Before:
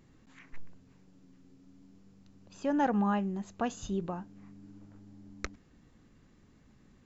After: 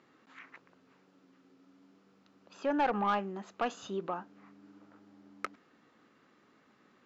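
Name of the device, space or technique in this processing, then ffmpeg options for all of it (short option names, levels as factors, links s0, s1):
intercom: -af "highpass=370,lowpass=4200,equalizer=f=1300:t=o:w=0.36:g=6.5,asoftclip=type=tanh:threshold=0.0531,volume=1.5"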